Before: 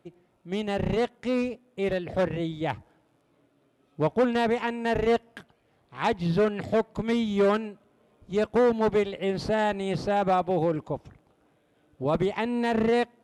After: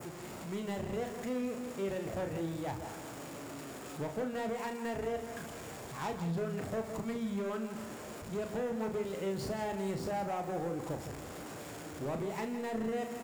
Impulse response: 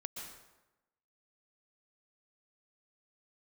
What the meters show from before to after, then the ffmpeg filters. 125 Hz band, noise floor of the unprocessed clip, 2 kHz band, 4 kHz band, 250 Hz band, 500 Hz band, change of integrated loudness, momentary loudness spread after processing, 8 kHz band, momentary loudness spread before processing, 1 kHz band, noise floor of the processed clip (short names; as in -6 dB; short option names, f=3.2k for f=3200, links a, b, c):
-8.0 dB, -67 dBFS, -11.0 dB, -10.5 dB, -9.0 dB, -11.5 dB, -11.5 dB, 9 LU, n/a, 9 LU, -10.5 dB, -46 dBFS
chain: -filter_complex "[0:a]aeval=exprs='val(0)+0.5*0.0282*sgn(val(0))':c=same,highpass=52,bandreject=f=6.2k:w=9.2,adynamicequalizer=threshold=0.00398:dfrequency=3700:dqfactor=1:tfrequency=3700:tqfactor=1:attack=5:release=100:ratio=0.375:range=3.5:mode=cutabove:tftype=bell,acompressor=threshold=-24dB:ratio=6,asoftclip=type=hard:threshold=-23.5dB,equalizer=f=6.8k:t=o:w=0.49:g=8.5,asplit=2[a][b];[b]adelay=36,volume=-7dB[c];[a][c]amix=inputs=2:normalize=0,asplit=2[d][e];[e]adelay=163.3,volume=-10dB,highshelf=f=4k:g=-3.67[f];[d][f]amix=inputs=2:normalize=0,asplit=2[g][h];[1:a]atrim=start_sample=2205,adelay=73[i];[h][i]afir=irnorm=-1:irlink=0,volume=-13dB[j];[g][j]amix=inputs=2:normalize=0,volume=-9dB"